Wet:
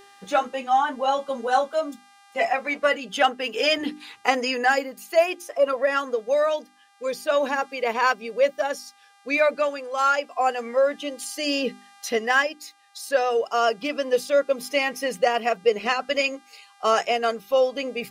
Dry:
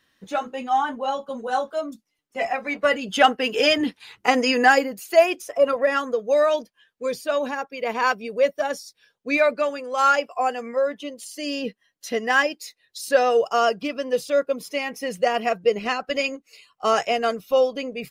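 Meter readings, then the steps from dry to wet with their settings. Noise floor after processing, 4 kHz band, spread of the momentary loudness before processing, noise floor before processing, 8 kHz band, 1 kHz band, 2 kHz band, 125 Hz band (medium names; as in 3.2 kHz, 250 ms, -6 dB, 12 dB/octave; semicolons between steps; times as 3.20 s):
-56 dBFS, -0.5 dB, 11 LU, -74 dBFS, +0.5 dB, -1.0 dB, -1.0 dB, no reading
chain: bass shelf 170 Hz -10 dB; mains buzz 400 Hz, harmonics 29, -53 dBFS -6 dB/octave; hum notches 50/100/150/200/250/300/350/400 Hz; gain riding within 5 dB 0.5 s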